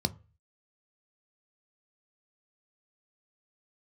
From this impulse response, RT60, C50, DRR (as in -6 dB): 0.35 s, 22.5 dB, 10.5 dB